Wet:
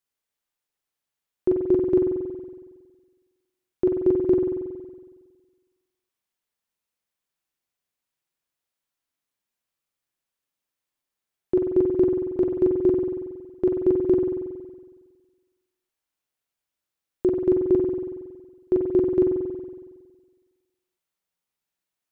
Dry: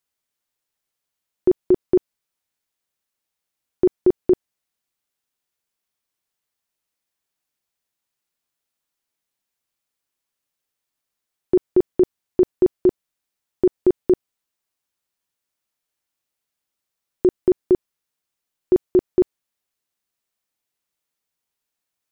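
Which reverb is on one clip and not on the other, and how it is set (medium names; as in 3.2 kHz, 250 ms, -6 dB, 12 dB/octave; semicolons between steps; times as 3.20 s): spring tank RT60 1.5 s, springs 46 ms, chirp 40 ms, DRR 1.5 dB; trim -5 dB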